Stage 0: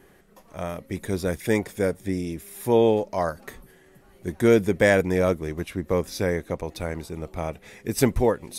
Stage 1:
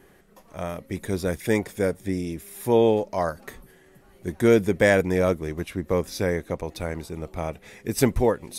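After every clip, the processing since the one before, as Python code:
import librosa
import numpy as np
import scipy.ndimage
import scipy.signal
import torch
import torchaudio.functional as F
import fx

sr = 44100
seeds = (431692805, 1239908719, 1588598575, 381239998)

y = x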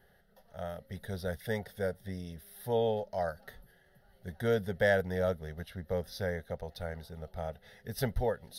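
y = fx.fixed_phaser(x, sr, hz=1600.0, stages=8)
y = y * librosa.db_to_amplitude(-6.5)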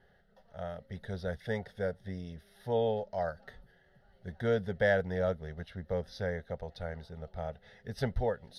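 y = fx.air_absorb(x, sr, metres=90.0)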